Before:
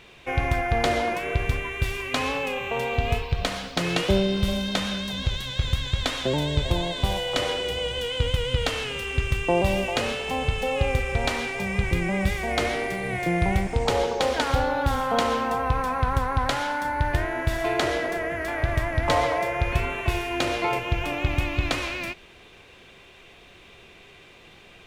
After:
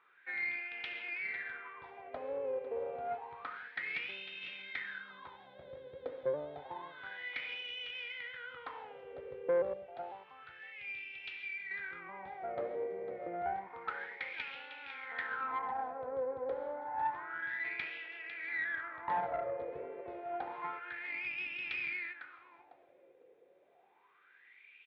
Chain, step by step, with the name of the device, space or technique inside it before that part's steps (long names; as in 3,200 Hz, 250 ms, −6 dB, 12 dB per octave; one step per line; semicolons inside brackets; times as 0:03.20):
0:09.73–0:11.71: octave-band graphic EQ 125/250/500/1,000/2,000 Hz +4/−11/−9/−9/−5 dB
repeating echo 501 ms, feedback 32%, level −10 dB
wah-wah guitar rig (LFO wah 0.29 Hz 500–2,700 Hz, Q 8.3; tube saturation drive 24 dB, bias 0.4; loudspeaker in its box 110–3,500 Hz, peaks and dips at 110 Hz −7 dB, 210 Hz −5 dB, 640 Hz −10 dB, 1,100 Hz −7 dB, 2,800 Hz −8 dB)
level +3.5 dB